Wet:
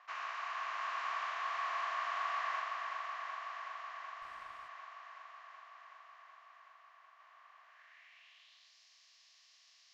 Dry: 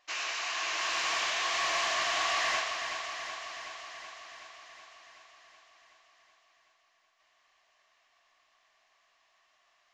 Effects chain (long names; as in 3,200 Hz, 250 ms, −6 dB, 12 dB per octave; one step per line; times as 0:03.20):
compressor on every frequency bin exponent 0.6
band-pass filter sweep 1,200 Hz → 5,000 Hz, 0:07.60–0:08.76
0:04.22–0:04.68: windowed peak hold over 3 samples
level −4.5 dB